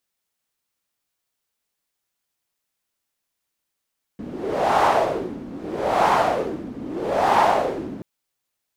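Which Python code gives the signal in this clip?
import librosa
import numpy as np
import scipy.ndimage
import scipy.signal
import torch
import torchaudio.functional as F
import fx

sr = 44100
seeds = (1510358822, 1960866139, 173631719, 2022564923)

y = fx.wind(sr, seeds[0], length_s=3.83, low_hz=250.0, high_hz=860.0, q=3.2, gusts=3, swing_db=17)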